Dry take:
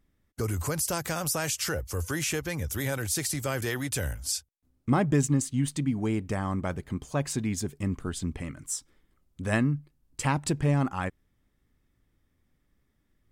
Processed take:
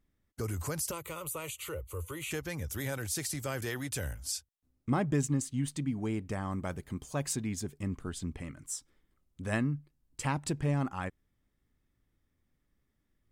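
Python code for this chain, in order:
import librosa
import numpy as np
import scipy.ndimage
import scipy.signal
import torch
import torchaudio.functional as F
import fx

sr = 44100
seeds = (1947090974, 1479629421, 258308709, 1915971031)

y = fx.fixed_phaser(x, sr, hz=1100.0, stages=8, at=(0.91, 2.31))
y = fx.high_shelf(y, sr, hz=fx.line((6.51, 7600.0), (7.34, 5200.0)), db=8.5, at=(6.51, 7.34), fade=0.02)
y = y * 10.0 ** (-5.5 / 20.0)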